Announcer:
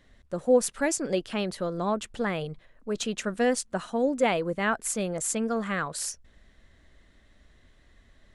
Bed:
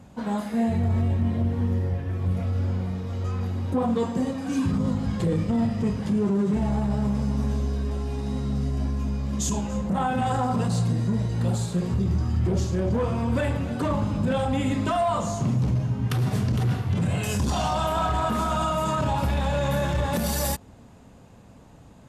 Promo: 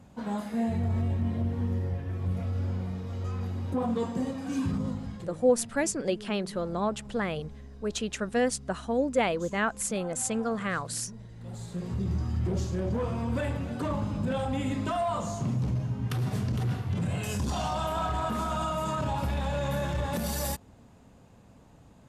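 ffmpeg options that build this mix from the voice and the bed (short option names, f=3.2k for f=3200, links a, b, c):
-filter_complex "[0:a]adelay=4950,volume=-1.5dB[a];[1:a]volume=10dB,afade=t=out:st=4.7:d=0.64:silence=0.16788,afade=t=in:st=11.41:d=0.69:silence=0.177828[b];[a][b]amix=inputs=2:normalize=0"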